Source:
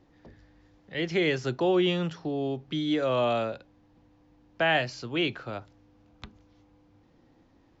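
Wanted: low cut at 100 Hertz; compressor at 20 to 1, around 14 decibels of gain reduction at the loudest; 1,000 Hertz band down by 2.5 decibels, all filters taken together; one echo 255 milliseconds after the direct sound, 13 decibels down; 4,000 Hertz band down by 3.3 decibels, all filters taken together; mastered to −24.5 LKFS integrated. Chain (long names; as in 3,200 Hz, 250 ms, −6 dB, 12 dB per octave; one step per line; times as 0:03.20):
high-pass filter 100 Hz
parametric band 1,000 Hz −3.5 dB
parametric band 4,000 Hz −4.5 dB
downward compressor 20 to 1, threshold −35 dBFS
single-tap delay 255 ms −13 dB
level +15.5 dB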